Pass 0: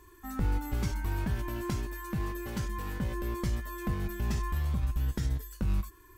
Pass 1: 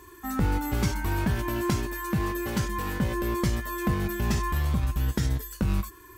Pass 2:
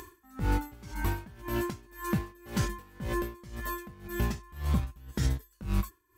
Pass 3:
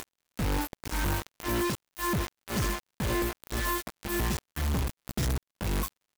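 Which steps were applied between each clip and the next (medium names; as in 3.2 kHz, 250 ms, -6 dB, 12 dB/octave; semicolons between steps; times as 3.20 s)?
high-pass 98 Hz 6 dB/octave; trim +8.5 dB
upward compressor, threshold -42 dBFS; logarithmic tremolo 1.9 Hz, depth 25 dB
companded quantiser 2-bit; crackle 90 per s -57 dBFS; trim -1.5 dB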